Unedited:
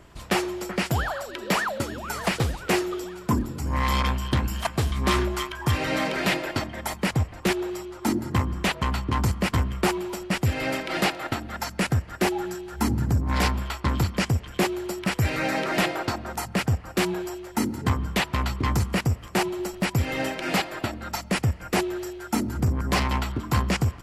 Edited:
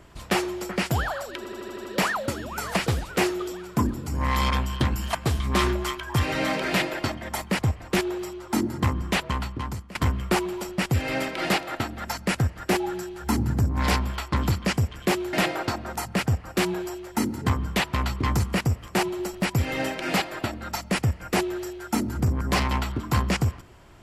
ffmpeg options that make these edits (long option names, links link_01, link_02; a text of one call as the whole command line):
ffmpeg -i in.wav -filter_complex "[0:a]asplit=9[link_01][link_02][link_03][link_04][link_05][link_06][link_07][link_08][link_09];[link_01]atrim=end=1.452[link_10];[link_02]atrim=start=1.368:end=1.452[link_11];[link_03]atrim=start=1.368:end=1.452[link_12];[link_04]atrim=start=1.368:end=1.452[link_13];[link_05]atrim=start=1.368:end=1.452[link_14];[link_06]atrim=start=1.368:end=1.452[link_15];[link_07]atrim=start=1.368:end=9.47,asetpts=PTS-STARTPTS,afade=type=out:start_time=7.322:duration=0.78:silence=0.0841395[link_16];[link_08]atrim=start=9.47:end=14.852,asetpts=PTS-STARTPTS,afade=type=in:duration=0.004:curve=hsin:silence=0.0841395[link_17];[link_09]atrim=start=15.728[link_18];[link_10][link_11]acrossfade=duration=0.004:curve1=hsin:curve2=hsin[link_19];[link_19][link_12]acrossfade=duration=0.004:curve1=hsin:curve2=hsin[link_20];[link_20][link_13]acrossfade=duration=0.004:curve1=hsin:curve2=hsin[link_21];[link_21][link_14]acrossfade=duration=0.004:curve1=hsin:curve2=hsin[link_22];[link_22][link_15]acrossfade=duration=0.004:curve1=hsin:curve2=hsin[link_23];[link_16][link_17]concat=n=2:v=0:a=1[link_24];[link_23][link_24]acrossfade=duration=0.004:curve1=hsin:curve2=hsin[link_25];[link_25][link_18]acrossfade=duration=0.004:curve1=hsin:curve2=hsin" out.wav